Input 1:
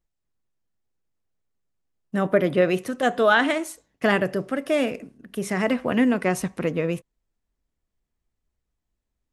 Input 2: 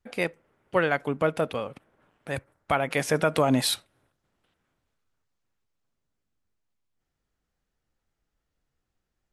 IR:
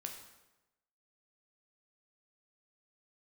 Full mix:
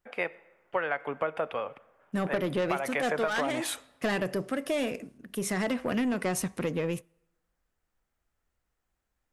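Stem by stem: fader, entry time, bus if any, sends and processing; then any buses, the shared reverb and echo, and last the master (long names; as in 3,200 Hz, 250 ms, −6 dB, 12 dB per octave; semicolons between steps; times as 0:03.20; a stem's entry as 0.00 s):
−3.0 dB, 0.00 s, send −24 dB, soft clipping −17 dBFS, distortion −12 dB
0.0 dB, 0.00 s, send −11.5 dB, three-way crossover with the lows and the highs turned down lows −14 dB, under 460 Hz, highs −24 dB, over 2,700 Hz; notch filter 4,100 Hz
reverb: on, RT60 1.0 s, pre-delay 8 ms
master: high-shelf EQ 4,200 Hz +6 dB; downward compressor 10 to 1, threshold −25 dBFS, peak gain reduction 9.5 dB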